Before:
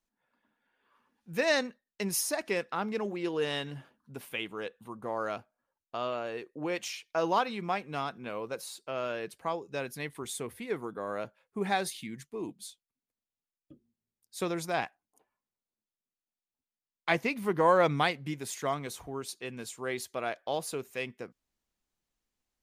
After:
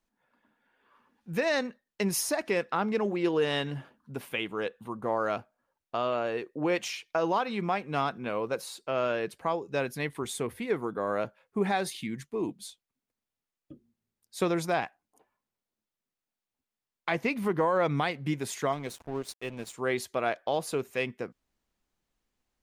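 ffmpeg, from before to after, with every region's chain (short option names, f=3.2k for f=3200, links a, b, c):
-filter_complex "[0:a]asettb=1/sr,asplit=3[a][b][c];[a]atrim=end=18.724[d];[b]atrim=start=18.72:end=19.74,asetpts=PTS-STARTPTS,afade=t=in:d=0.004:c=qsin,afade=t=out:st=1.016:d=0.004:c=qsin,equalizer=f=1.3k:w=3.2:g=-11,aeval=exprs='sgn(val(0))*max(abs(val(0))-0.00376,0)':c=same[e];[c]atrim=start=19.736[f];[d][e]acrossfade=d=0.004:c1=hsin:c2=qsin[g];[g][f]acrossfade=d=0.004:c1=qsin:c2=hsin,highshelf=f=3.7k:g=-6.5,alimiter=limit=-23dB:level=0:latency=1:release=200,volume=6dB"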